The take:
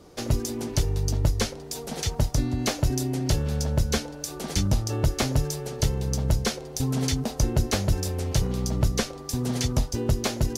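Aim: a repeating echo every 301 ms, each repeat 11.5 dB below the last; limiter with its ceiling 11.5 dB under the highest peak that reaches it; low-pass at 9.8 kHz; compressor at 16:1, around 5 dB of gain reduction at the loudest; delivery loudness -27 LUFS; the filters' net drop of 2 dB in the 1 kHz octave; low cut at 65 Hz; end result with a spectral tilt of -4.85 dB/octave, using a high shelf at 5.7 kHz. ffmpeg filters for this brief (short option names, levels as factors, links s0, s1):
-af "highpass=65,lowpass=9800,equalizer=f=1000:t=o:g=-3,highshelf=f=5700:g=7,acompressor=threshold=0.0708:ratio=16,alimiter=limit=0.0794:level=0:latency=1,aecho=1:1:301|602|903:0.266|0.0718|0.0194,volume=1.78"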